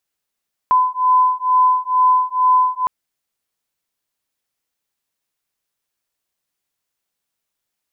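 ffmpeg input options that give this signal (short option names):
-f lavfi -i "aevalsrc='0.178*(sin(2*PI*1010*t)+sin(2*PI*1012.2*t))':d=2.16:s=44100"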